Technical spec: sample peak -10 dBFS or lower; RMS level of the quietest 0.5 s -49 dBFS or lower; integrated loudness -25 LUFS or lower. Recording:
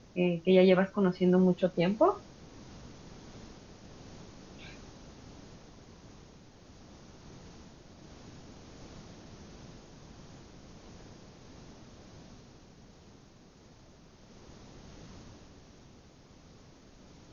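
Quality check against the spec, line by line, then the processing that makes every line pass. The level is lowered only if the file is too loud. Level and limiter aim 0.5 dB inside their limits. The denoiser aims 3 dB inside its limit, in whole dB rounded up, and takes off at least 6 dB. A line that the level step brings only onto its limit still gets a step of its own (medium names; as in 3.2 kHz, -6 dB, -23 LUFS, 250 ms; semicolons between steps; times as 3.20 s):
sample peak -11.5 dBFS: pass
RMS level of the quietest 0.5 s -57 dBFS: pass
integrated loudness -26.5 LUFS: pass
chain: none needed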